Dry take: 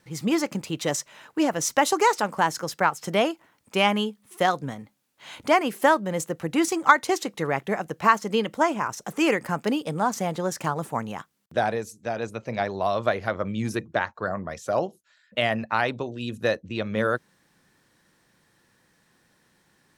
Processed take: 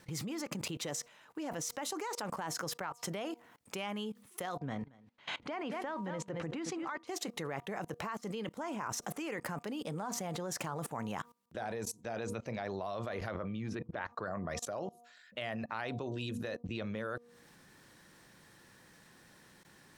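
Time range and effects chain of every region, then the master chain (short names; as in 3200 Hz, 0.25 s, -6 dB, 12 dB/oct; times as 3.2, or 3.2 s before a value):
4.58–7.07 LPF 3800 Hz + echo 0.226 s -14.5 dB
13.35–14.06 LPF 3600 Hz + upward compressor, threshold -30 dBFS
whole clip: compressor 6:1, threshold -26 dBFS; de-hum 238.3 Hz, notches 5; level quantiser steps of 22 dB; gain +5.5 dB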